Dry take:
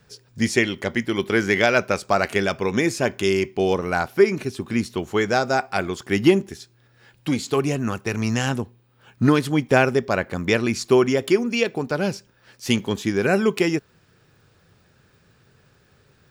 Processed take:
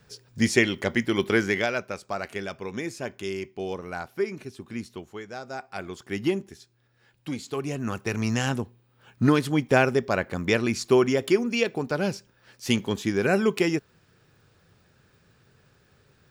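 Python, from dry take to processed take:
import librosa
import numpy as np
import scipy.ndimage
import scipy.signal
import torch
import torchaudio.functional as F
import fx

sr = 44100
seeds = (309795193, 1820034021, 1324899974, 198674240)

y = fx.gain(x, sr, db=fx.line((1.31, -1.0), (1.84, -11.5), (4.95, -11.5), (5.25, -19.0), (5.93, -9.5), (7.59, -9.5), (7.99, -3.0)))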